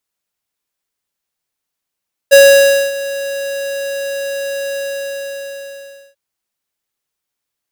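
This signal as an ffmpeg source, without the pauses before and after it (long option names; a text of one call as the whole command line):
ffmpeg -f lavfi -i "aevalsrc='0.668*(2*lt(mod(555*t,1),0.5)-1)':duration=3.84:sample_rate=44100,afade=type=in:duration=0.022,afade=type=out:start_time=0.022:duration=0.583:silence=0.133,afade=type=out:start_time=2.45:duration=1.39" out.wav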